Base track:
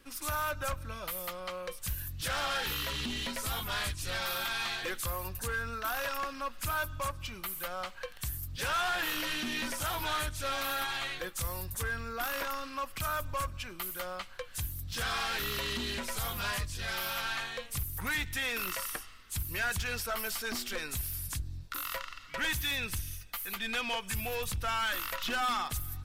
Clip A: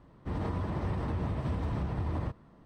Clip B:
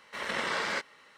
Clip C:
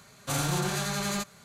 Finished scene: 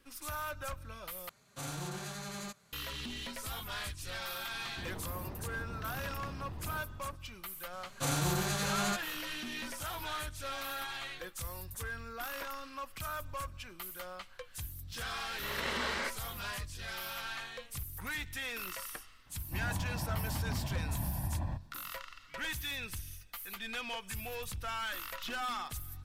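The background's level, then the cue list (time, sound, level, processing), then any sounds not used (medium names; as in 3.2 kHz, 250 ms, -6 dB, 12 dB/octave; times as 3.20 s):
base track -6 dB
1.29 s: replace with C -12 dB
4.51 s: add A -12.5 dB + level flattener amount 50%
7.73 s: add C -3.5 dB
15.29 s: add B -4.5 dB
19.26 s: add A -8 dB + comb 1.2 ms, depth 91%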